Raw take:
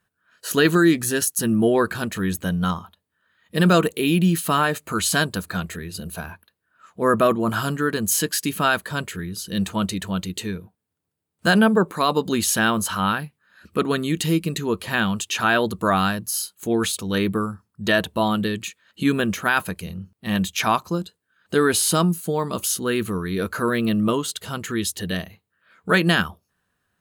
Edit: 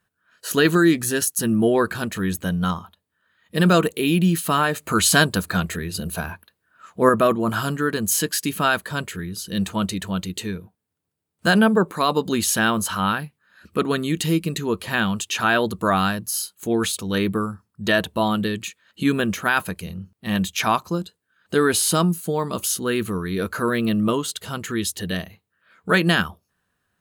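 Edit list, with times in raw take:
0:04.78–0:07.09: clip gain +4.5 dB

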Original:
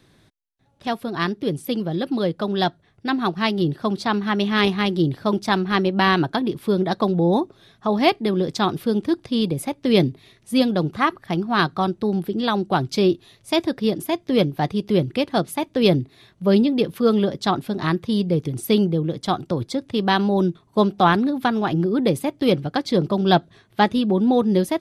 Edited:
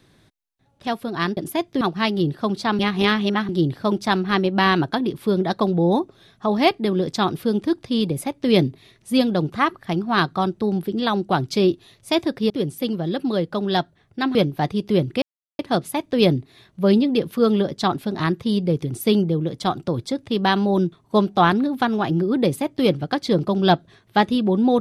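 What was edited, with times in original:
0:01.37–0:03.22: swap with 0:13.91–0:14.35
0:04.20–0:04.90: reverse
0:15.22: splice in silence 0.37 s

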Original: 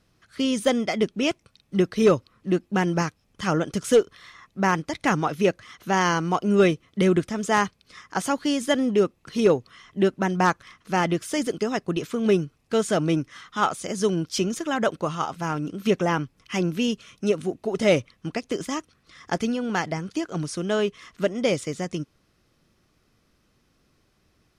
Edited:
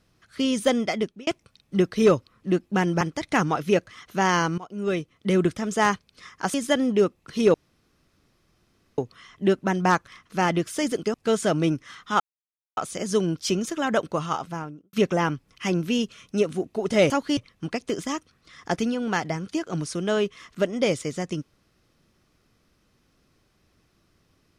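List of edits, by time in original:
0:00.90–0:01.27: fade out
0:03.01–0:04.73: remove
0:06.30–0:07.23: fade in, from −20.5 dB
0:08.26–0:08.53: move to 0:17.99
0:09.53: splice in room tone 1.44 s
0:11.69–0:12.60: remove
0:13.66: splice in silence 0.57 s
0:15.22–0:15.82: fade out and dull

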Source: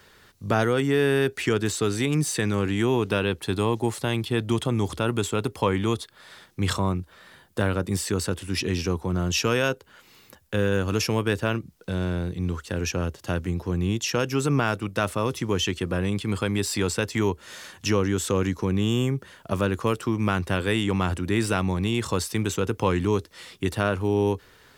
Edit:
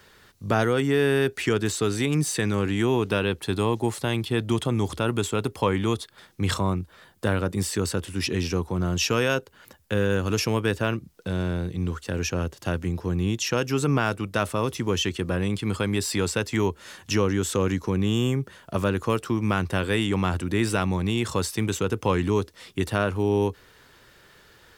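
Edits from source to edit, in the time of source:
compress silence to 45%

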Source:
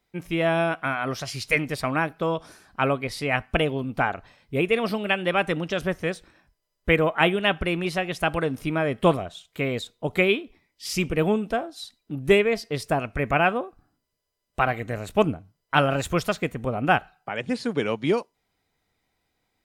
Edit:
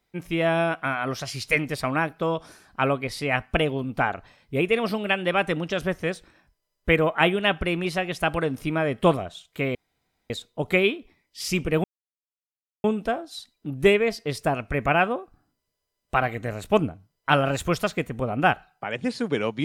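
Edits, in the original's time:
0:09.75: splice in room tone 0.55 s
0:11.29: splice in silence 1.00 s

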